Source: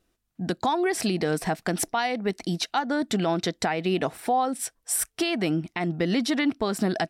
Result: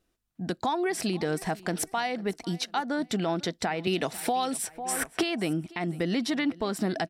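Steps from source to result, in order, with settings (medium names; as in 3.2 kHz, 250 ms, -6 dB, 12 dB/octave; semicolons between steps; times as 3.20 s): feedback delay 498 ms, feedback 31%, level -21 dB; 3.87–5.23 s: three bands compressed up and down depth 100%; trim -3.5 dB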